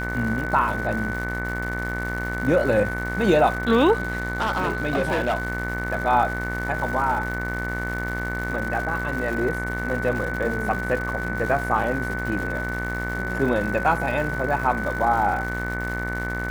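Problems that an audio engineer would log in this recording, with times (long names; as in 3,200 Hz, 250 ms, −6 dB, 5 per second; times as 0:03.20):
mains buzz 60 Hz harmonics 38 −30 dBFS
surface crackle 300 per second −31 dBFS
whistle 1,500 Hz −29 dBFS
0:03.93–0:05.47: clipping −18 dBFS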